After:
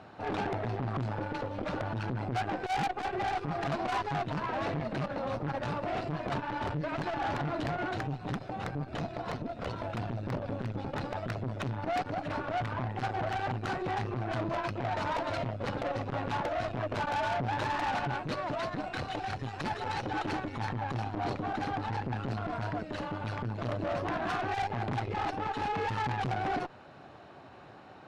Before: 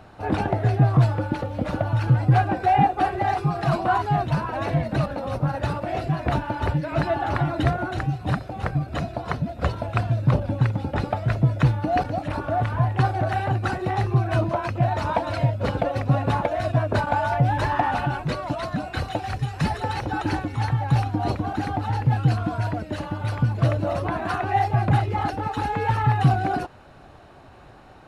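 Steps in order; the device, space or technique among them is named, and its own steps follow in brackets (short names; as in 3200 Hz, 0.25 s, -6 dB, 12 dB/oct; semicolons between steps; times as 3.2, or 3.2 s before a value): valve radio (BPF 130–5700 Hz; tube stage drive 27 dB, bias 0.55; core saturation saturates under 220 Hz)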